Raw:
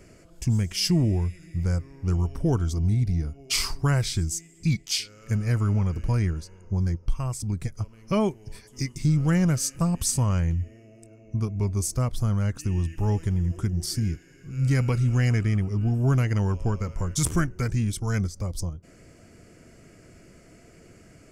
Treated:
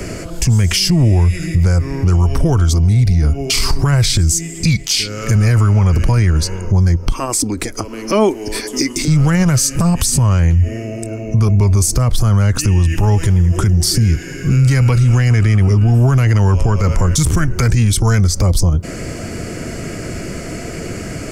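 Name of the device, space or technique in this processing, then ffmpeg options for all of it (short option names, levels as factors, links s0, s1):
mastering chain: -filter_complex "[0:a]equalizer=f=4300:t=o:w=0.22:g=2,acrossover=split=120|500[s0][s1][s2];[s0]acompressor=threshold=0.0501:ratio=4[s3];[s1]acompressor=threshold=0.0178:ratio=4[s4];[s2]acompressor=threshold=0.02:ratio=4[s5];[s3][s4][s5]amix=inputs=3:normalize=0,acompressor=threshold=0.0316:ratio=3,asoftclip=type=tanh:threshold=0.0944,alimiter=level_in=35.5:limit=0.891:release=50:level=0:latency=1,asettb=1/sr,asplit=3[s6][s7][s8];[s6]atrim=end=7.124[s9];[s7]atrim=start=7.12:end=9.08,asetpts=PTS-STARTPTS,afade=t=in:d=0.004:c=qsin,afade=t=out:st=1.956:d=0.004:c=qsin,lowshelf=f=200:t=q:w=3:g=-11.5[s10];[s8]atrim=start=9.076[s11];[s9][s10]acrossfade=d=0.004:c1=hsin:c2=qsin[s12];[s12][s11]acrossfade=d=0.004:c1=qsin:c2=hsin,volume=0.562"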